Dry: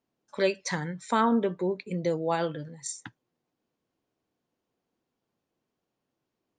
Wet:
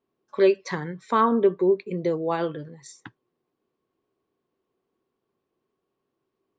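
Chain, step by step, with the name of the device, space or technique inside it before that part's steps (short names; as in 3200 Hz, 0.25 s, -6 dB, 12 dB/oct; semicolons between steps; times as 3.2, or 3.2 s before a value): inside a cardboard box (LPF 4200 Hz 12 dB/oct; small resonant body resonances 390/1100 Hz, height 11 dB, ringing for 40 ms)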